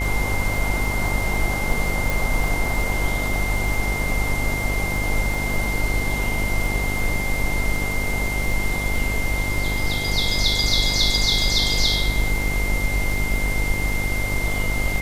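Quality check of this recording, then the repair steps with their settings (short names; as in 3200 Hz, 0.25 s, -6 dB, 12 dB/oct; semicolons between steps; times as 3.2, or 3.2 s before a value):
buzz 50 Hz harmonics 20 -27 dBFS
crackle 25/s -26 dBFS
tone 2100 Hz -26 dBFS
2.1 pop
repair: de-click; de-hum 50 Hz, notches 20; notch 2100 Hz, Q 30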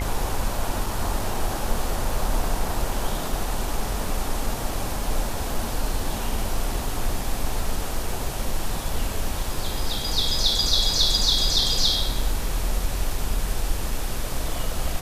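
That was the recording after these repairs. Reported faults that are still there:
2.1 pop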